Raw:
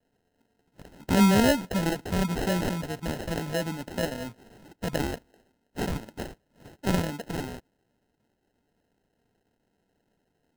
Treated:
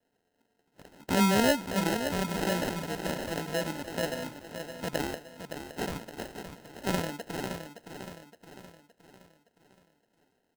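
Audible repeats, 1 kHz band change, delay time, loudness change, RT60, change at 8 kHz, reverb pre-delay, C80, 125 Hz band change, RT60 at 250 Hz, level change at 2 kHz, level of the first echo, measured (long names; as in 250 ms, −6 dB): 5, −0.5 dB, 567 ms, −3.5 dB, no reverb audible, −0.5 dB, no reverb audible, no reverb audible, −6.0 dB, no reverb audible, −0.5 dB, −8.5 dB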